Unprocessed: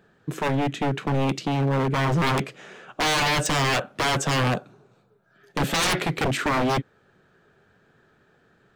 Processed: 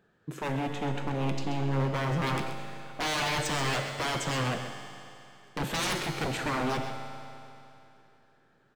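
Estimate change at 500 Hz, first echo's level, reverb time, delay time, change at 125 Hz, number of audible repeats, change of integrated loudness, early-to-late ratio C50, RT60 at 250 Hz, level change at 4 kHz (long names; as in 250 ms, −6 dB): −7.0 dB, −10.0 dB, 2.9 s, 131 ms, −6.5 dB, 1, −7.0 dB, 4.5 dB, 2.9 s, −7.0 dB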